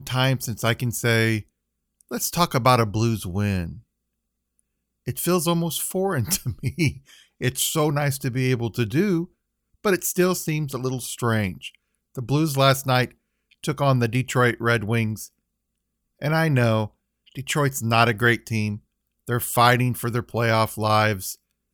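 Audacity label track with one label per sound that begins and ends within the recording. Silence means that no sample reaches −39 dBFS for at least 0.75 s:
5.060000	15.270000	sound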